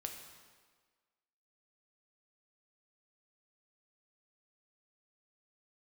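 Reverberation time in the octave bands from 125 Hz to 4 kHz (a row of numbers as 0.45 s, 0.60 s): 1.2 s, 1.5 s, 1.5 s, 1.5 s, 1.4 s, 1.3 s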